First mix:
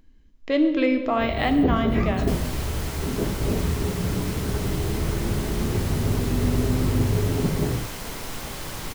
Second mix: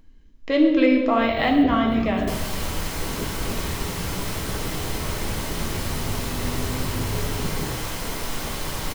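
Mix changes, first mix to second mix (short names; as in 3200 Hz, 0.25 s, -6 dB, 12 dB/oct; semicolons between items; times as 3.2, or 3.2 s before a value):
speech: send +6.5 dB; first sound -7.0 dB; second sound: send +10.5 dB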